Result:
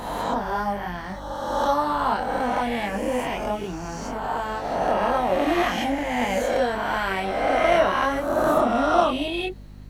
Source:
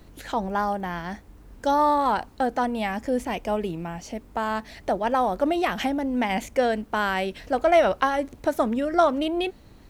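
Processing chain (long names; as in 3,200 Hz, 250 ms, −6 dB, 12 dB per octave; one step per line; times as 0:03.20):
peak hold with a rise ahead of every peak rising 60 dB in 1.90 s
multi-voice chorus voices 6, 0.49 Hz, delay 25 ms, depth 4.8 ms
mains hum 50 Hz, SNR 18 dB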